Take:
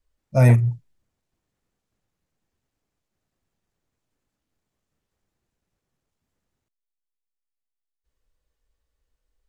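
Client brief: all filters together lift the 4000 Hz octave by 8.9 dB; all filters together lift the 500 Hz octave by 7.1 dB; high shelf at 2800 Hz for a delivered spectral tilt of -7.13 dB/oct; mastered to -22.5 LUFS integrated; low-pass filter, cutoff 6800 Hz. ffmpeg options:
-af "lowpass=6.8k,equalizer=f=500:t=o:g=8.5,highshelf=f=2.8k:g=4,equalizer=f=4k:t=o:g=9,volume=-5.5dB"

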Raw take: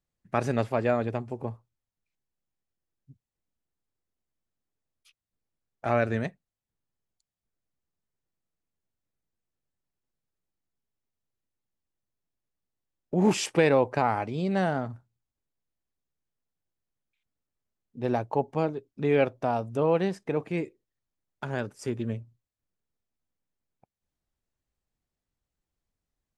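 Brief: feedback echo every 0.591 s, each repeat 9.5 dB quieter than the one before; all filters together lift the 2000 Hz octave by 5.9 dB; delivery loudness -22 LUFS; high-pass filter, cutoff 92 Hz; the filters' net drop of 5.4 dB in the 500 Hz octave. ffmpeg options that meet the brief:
-af "highpass=92,equalizer=f=500:t=o:g=-7,equalizer=f=2k:t=o:g=8,aecho=1:1:591|1182|1773|2364:0.335|0.111|0.0365|0.012,volume=8dB"

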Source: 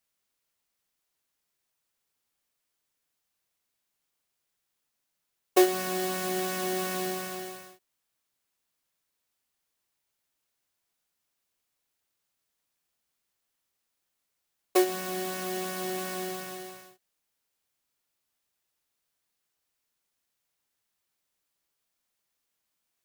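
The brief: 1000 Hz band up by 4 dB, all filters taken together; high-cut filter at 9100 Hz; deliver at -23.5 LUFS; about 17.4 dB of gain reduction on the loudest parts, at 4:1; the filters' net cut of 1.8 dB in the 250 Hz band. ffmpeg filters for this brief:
-af "lowpass=9.1k,equalizer=f=250:t=o:g=-5,equalizer=f=1k:t=o:g=6.5,acompressor=threshold=-37dB:ratio=4,volume=17dB"

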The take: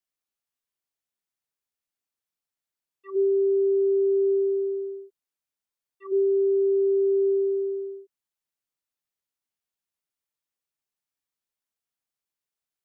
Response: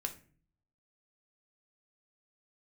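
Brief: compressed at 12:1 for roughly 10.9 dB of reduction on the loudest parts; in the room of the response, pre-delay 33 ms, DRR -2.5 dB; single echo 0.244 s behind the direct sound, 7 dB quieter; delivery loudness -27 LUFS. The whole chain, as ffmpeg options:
-filter_complex "[0:a]acompressor=threshold=-31dB:ratio=12,aecho=1:1:244:0.447,asplit=2[a][b];[1:a]atrim=start_sample=2205,adelay=33[c];[b][c]afir=irnorm=-1:irlink=0,volume=2.5dB[d];[a][d]amix=inputs=2:normalize=0,volume=3dB"

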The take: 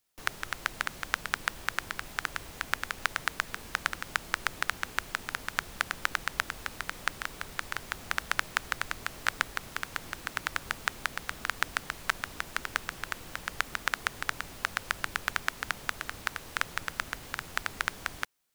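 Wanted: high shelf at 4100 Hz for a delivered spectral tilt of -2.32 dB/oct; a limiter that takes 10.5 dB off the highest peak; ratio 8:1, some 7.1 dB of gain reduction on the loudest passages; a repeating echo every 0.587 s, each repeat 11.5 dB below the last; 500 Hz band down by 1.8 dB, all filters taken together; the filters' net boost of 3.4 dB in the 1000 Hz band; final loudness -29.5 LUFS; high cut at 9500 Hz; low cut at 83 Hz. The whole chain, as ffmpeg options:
-af "highpass=83,lowpass=9.5k,equalizer=f=500:t=o:g=-4.5,equalizer=f=1k:t=o:g=6,highshelf=f=4.1k:g=-4,acompressor=threshold=-30dB:ratio=8,alimiter=limit=-19.5dB:level=0:latency=1,aecho=1:1:587|1174|1761:0.266|0.0718|0.0194,volume=14.5dB"

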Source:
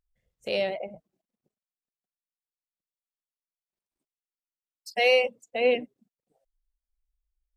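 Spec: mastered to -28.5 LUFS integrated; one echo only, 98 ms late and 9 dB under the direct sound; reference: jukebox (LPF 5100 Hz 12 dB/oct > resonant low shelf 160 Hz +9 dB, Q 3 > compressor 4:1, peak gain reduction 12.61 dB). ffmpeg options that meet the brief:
-af "lowpass=5.1k,lowshelf=f=160:t=q:w=3:g=9,aecho=1:1:98:0.355,acompressor=threshold=-32dB:ratio=4,volume=7.5dB"

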